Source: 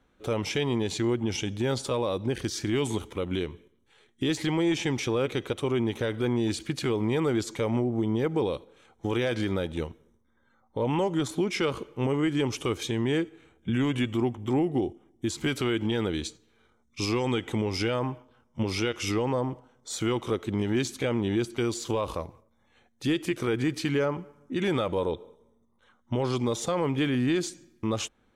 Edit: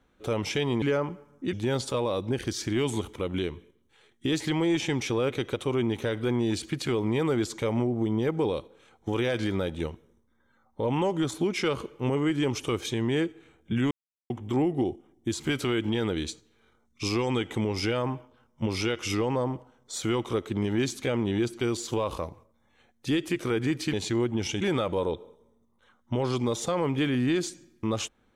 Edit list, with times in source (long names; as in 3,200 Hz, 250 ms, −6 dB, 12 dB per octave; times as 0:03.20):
0:00.82–0:01.50: swap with 0:23.90–0:24.61
0:13.88–0:14.27: silence